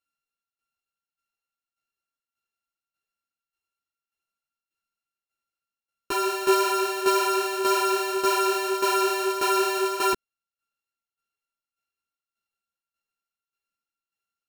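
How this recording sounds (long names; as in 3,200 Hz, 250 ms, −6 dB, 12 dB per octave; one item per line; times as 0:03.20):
a buzz of ramps at a fixed pitch in blocks of 32 samples
tremolo saw down 1.7 Hz, depth 70%
a shimmering, thickened sound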